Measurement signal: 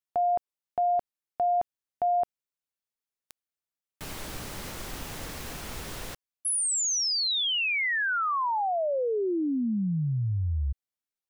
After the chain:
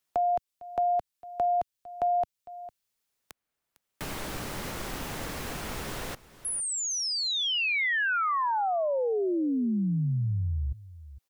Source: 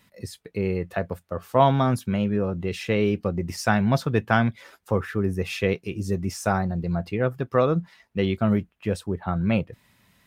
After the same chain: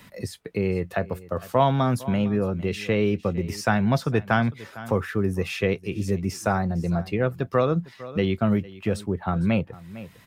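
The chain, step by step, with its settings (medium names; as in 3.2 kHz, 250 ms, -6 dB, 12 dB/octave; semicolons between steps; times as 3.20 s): on a send: delay 454 ms -21 dB; on the sum: three bands compressed up and down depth 40%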